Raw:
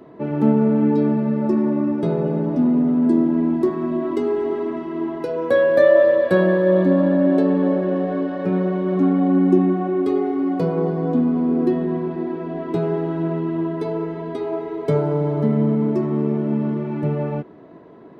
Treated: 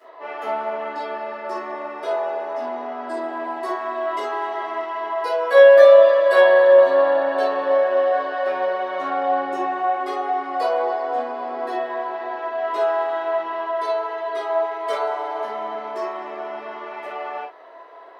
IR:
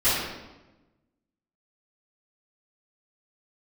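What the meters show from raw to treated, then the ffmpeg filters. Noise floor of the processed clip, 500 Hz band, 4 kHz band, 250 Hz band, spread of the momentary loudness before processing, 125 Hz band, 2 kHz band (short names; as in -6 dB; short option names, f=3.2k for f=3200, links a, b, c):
-38 dBFS, +2.5 dB, n/a, -20.5 dB, 10 LU, under -35 dB, +6.0 dB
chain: -filter_complex "[0:a]highpass=f=640:w=0.5412,highpass=f=640:w=1.3066[a];[1:a]atrim=start_sample=2205,atrim=end_sample=3969[b];[a][b]afir=irnorm=-1:irlink=0,volume=-6dB"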